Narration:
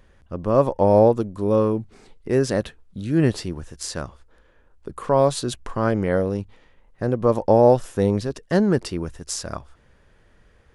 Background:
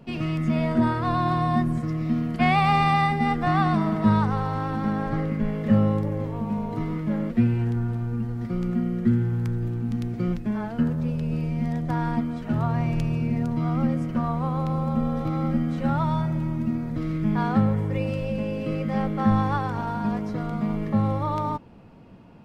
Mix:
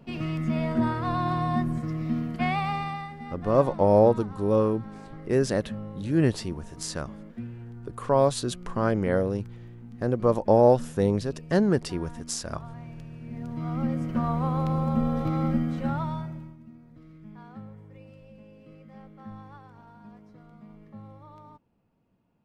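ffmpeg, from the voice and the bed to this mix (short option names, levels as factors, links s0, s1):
-filter_complex "[0:a]adelay=3000,volume=0.668[s0];[1:a]volume=4.47,afade=t=out:st=2.18:d=0.89:silence=0.211349,afade=t=in:st=13.21:d=1.12:silence=0.149624,afade=t=out:st=15.45:d=1.12:silence=0.0794328[s1];[s0][s1]amix=inputs=2:normalize=0"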